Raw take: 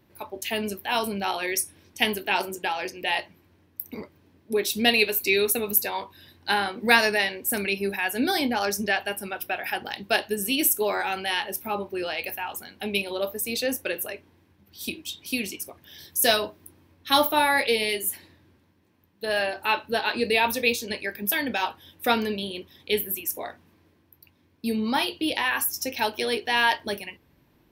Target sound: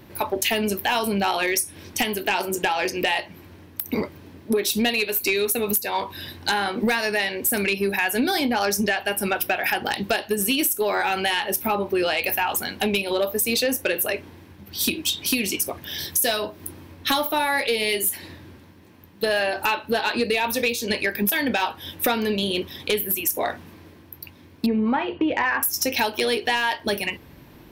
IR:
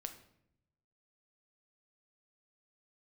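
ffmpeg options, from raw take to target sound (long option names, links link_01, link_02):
-filter_complex "[0:a]asettb=1/sr,asplit=3[link_01][link_02][link_03];[link_01]atrim=end=24.664[link_04];[link_02]atrim=start=24.66:end=25.63,asetpts=PTS-STARTPTS,afade=type=in:duration=0.004:curve=qsin,afade=type=out:start_time=0.966:duration=0.004:curve=qsin,lowpass=frequency=2100:width=0.5412,lowpass=frequency=2100:width=1.3066[link_05];[link_03]atrim=start=25.626[link_06];[link_04][link_05]acrossfade=duration=0.004:curve1=hsin:curve2=qsin[link_07];[link_07][link_06]acrossfade=duration=0.004:curve1=qsin:curve2=hsin,acompressor=threshold=-33dB:ratio=12,aeval=exprs='0.211*sin(PI/2*3.55*val(0)/0.211)':channel_layout=same"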